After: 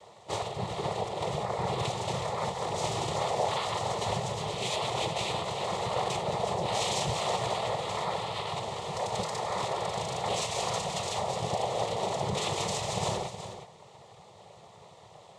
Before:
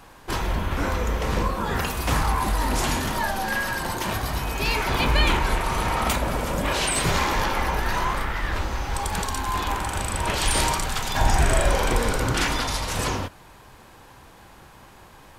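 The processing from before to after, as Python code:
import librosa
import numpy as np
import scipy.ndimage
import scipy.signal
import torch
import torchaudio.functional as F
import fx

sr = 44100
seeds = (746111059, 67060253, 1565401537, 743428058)

p1 = fx.high_shelf(x, sr, hz=4500.0, db=-9.5)
p2 = fx.over_compress(p1, sr, threshold_db=-26.0, ratio=-1.0)
p3 = p1 + F.gain(torch.from_numpy(p2), 1.5).numpy()
p4 = fx.noise_vocoder(p3, sr, seeds[0], bands=6)
p5 = fx.fixed_phaser(p4, sr, hz=650.0, stages=4)
p6 = p5 + 10.0 ** (-10.5 / 20.0) * np.pad(p5, (int(368 * sr / 1000.0), 0))[:len(p5)]
y = F.gain(torch.from_numpy(p6), -6.5).numpy()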